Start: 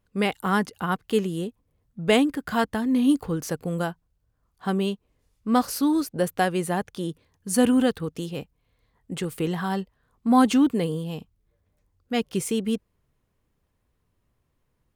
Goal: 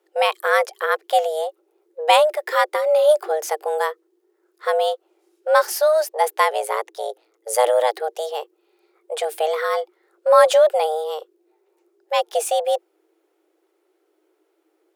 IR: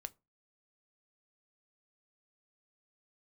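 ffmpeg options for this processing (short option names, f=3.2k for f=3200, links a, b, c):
-filter_complex "[0:a]asettb=1/sr,asplit=3[a][b][c];[a]atrim=end=6.504[d];[b]atrim=start=6.5:end=7.95,asetpts=PTS-STARTPTS,afade=t=in:d=0.004:c=qsin,afade=t=out:st=1.446:d=0.004:c=qsin,aeval=exprs='val(0)*sin(2*PI*57*n/s)':c=same[e];[c]atrim=start=7.946[f];[d][e]acrossfade=d=0.004:c1=hsin:c2=qsin[g];[g][f]acrossfade=d=0.004:c1=qsin:c2=hsin,afreqshift=310,volume=5dB"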